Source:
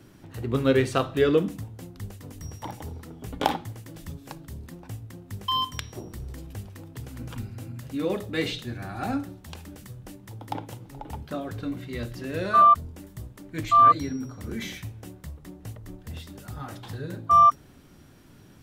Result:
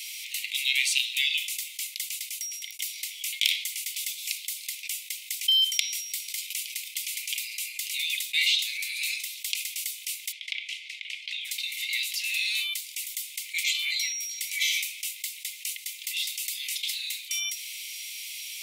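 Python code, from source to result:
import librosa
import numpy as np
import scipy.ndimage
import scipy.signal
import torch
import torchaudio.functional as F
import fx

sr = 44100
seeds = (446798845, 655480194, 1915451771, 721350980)

y = fx.lowpass(x, sr, hz=2900.0, slope=12, at=(10.31, 11.44), fade=0.02)
y = fx.edit(y, sr, fx.fade_out_span(start_s=2.07, length_s=0.72), tone=tone)
y = scipy.signal.sosfilt(scipy.signal.cheby1(8, 1.0, 2100.0, 'highpass', fs=sr, output='sos'), y)
y = fx.env_flatten(y, sr, amount_pct=50)
y = y * 10.0 ** (8.5 / 20.0)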